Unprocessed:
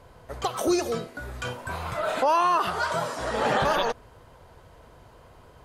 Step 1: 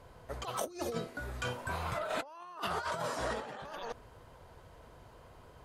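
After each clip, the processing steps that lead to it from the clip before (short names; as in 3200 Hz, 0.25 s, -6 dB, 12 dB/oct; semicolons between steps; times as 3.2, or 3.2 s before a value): negative-ratio compressor -29 dBFS, ratio -0.5; gain -8 dB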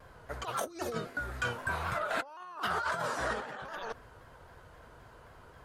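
bell 1500 Hz +7.5 dB 0.67 oct; shaped vibrato saw down 3.8 Hz, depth 100 cents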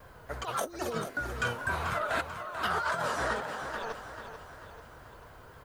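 added noise violet -73 dBFS; feedback echo 0.439 s, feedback 50%, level -9.5 dB; gain +2 dB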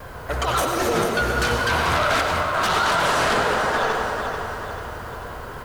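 in parallel at -4 dB: sine folder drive 13 dB, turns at -17.5 dBFS; on the sum: reverb RT60 1.9 s, pre-delay 85 ms, DRR 1.5 dB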